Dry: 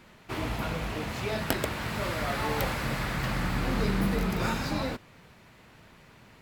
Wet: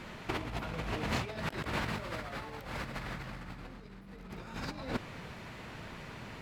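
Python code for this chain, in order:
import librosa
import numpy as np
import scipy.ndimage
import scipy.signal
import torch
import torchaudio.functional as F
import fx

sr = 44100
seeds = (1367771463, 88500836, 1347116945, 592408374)

y = fx.high_shelf(x, sr, hz=10000.0, db=-12.0)
y = fx.over_compress(y, sr, threshold_db=-37.0, ratio=-0.5)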